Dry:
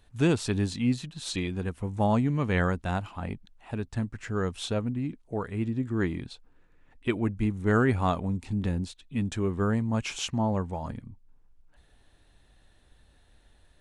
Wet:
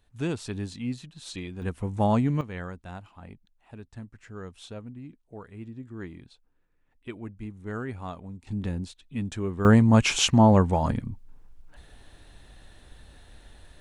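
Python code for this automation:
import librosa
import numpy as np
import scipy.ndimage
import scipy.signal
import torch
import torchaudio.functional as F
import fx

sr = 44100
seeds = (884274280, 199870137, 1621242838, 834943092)

y = fx.gain(x, sr, db=fx.steps((0.0, -6.0), (1.62, 1.5), (2.41, -11.0), (8.47, -2.0), (9.65, 10.0)))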